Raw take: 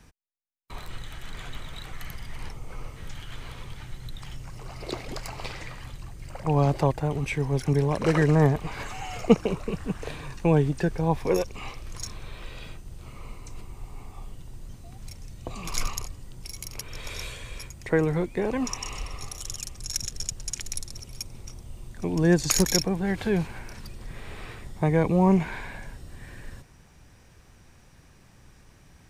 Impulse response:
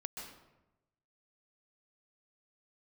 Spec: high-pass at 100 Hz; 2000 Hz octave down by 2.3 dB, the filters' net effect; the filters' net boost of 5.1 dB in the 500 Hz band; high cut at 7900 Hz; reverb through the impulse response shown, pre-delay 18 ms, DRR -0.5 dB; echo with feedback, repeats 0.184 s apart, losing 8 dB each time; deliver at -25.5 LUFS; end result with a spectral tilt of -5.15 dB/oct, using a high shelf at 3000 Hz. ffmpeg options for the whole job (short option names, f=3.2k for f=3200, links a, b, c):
-filter_complex "[0:a]highpass=100,lowpass=7.9k,equalizer=f=500:t=o:g=6,equalizer=f=2k:t=o:g=-5.5,highshelf=f=3k:g=6.5,aecho=1:1:184|368|552|736|920:0.398|0.159|0.0637|0.0255|0.0102,asplit=2[a][b];[1:a]atrim=start_sample=2205,adelay=18[c];[b][c]afir=irnorm=-1:irlink=0,volume=2dB[d];[a][d]amix=inputs=2:normalize=0,volume=-5dB"